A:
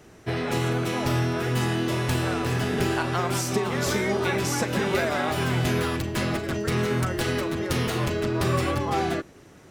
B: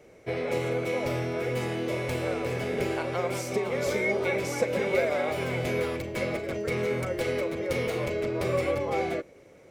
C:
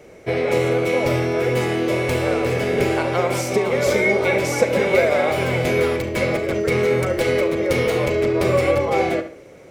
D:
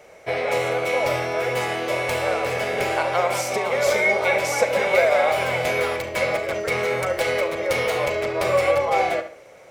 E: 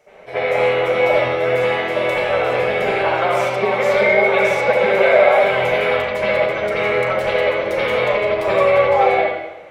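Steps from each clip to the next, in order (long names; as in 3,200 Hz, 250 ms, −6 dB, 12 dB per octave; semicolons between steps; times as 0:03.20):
hollow resonant body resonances 520/2,200 Hz, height 16 dB, ringing for 25 ms; level −9 dB
feedback echo with a low-pass in the loop 70 ms, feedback 34%, low-pass 4,800 Hz, level −10.5 dB; level +9 dB
low shelf with overshoot 470 Hz −10 dB, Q 1.5
convolution reverb RT60 0.90 s, pre-delay 63 ms, DRR −15 dB; level −9.5 dB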